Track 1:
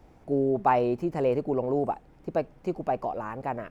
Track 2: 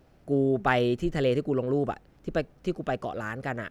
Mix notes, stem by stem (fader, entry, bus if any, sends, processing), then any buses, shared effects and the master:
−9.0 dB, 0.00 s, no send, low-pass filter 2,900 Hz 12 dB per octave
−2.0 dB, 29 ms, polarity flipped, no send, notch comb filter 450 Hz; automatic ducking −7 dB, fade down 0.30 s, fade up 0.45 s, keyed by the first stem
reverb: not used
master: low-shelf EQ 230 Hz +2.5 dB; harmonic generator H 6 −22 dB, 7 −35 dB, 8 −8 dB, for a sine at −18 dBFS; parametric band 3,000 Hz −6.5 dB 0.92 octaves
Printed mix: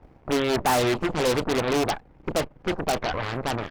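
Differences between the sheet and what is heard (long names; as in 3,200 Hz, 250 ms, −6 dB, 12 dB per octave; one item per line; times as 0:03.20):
stem 1 −9.0 dB → +1.0 dB
master: missing parametric band 3,000 Hz −6.5 dB 0.92 octaves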